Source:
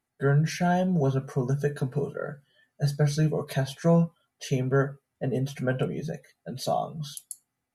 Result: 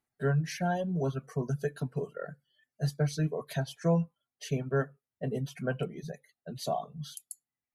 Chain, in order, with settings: reverb removal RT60 1.1 s; trim -4.5 dB

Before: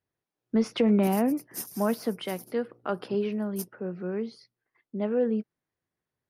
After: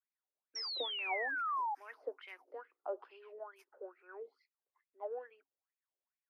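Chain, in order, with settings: wah-wah 2.3 Hz 520–2500 Hz, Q 7.9; painted sound fall, 0.55–1.75 s, 800–5700 Hz -38 dBFS; rippled Chebyshev high-pass 270 Hz, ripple 6 dB; trim +3 dB

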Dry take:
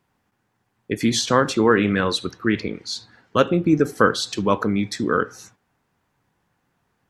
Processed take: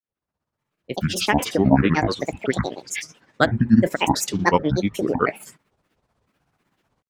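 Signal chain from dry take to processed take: fade-in on the opening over 1.79 s; granulator 96 ms, grains 16 per s, spray 72 ms, pitch spread up and down by 12 st; trim +3 dB

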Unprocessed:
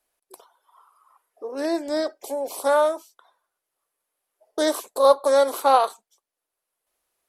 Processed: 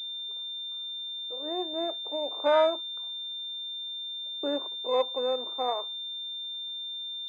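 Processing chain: Doppler pass-by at 2.98 s, 29 m/s, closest 20 m; gate with hold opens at -57 dBFS; crackle 300 per s -45 dBFS; distance through air 400 m; class-D stage that switches slowly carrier 3.6 kHz

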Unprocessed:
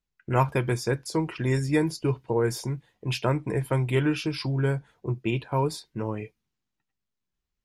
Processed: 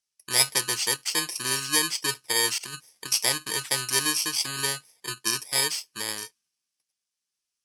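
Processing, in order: bit-reversed sample order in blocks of 32 samples; frequency weighting ITU-R 468; 2.58–3.12 s: compressor with a negative ratio -37 dBFS, ratio -0.5

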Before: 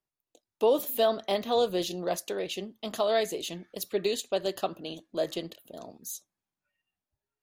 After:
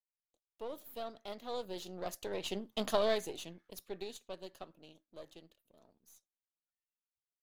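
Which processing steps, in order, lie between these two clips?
partial rectifier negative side -7 dB; Doppler pass-by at 2.75 s, 8 m/s, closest 1.8 m; trim +2 dB

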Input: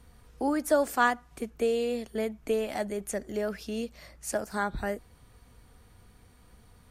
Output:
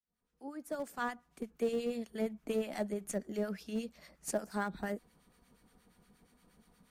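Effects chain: fade-in on the opening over 2.05 s; harmonic tremolo 8.5 Hz, depth 70%, crossover 1.1 kHz; in parallel at -9 dB: Schmitt trigger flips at -29 dBFS; on the sum: resonant low shelf 140 Hz -7.5 dB, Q 3; trim -4 dB

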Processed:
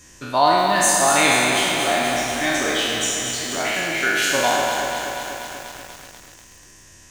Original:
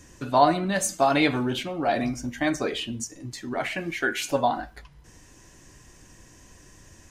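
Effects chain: spectral sustain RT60 1.91 s; tilt shelf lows -4.5 dB; bit-crushed delay 243 ms, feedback 80%, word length 6-bit, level -7 dB

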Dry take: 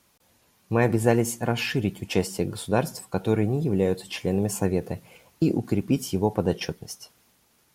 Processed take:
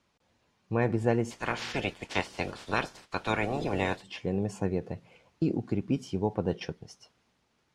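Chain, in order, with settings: 1.30–4.01 s: spectral peaks clipped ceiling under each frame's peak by 26 dB; distance through air 110 m; trim -5.5 dB

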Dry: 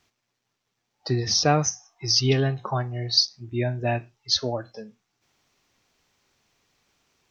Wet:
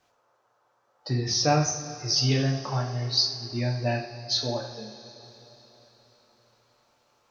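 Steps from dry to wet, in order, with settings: band noise 400–1400 Hz -67 dBFS; two-slope reverb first 0.49 s, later 4.2 s, from -17 dB, DRR 0 dB; trim -5.5 dB

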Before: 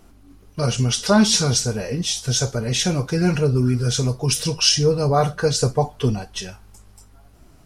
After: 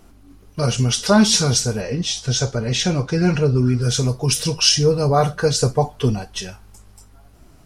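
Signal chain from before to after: 1.81–3.82 s: low-pass 6.4 kHz 12 dB/octave; trim +1.5 dB

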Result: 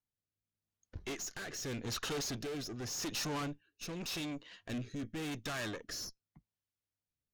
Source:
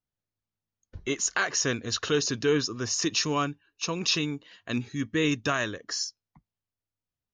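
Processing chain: valve stage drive 37 dB, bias 0.7; rotary cabinet horn 0.85 Hz; trim +2 dB

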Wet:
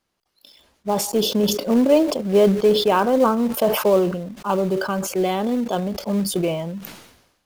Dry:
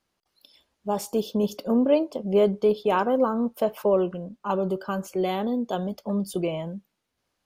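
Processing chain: in parallel at -8.5 dB: companded quantiser 4-bit; on the sum: decay stretcher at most 63 dB/s; trim +1.5 dB

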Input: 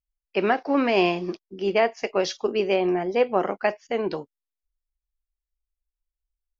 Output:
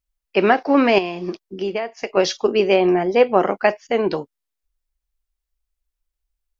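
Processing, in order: 0.98–2.17 s: compression 16:1, threshold -27 dBFS, peak gain reduction 13 dB; trim +6.5 dB

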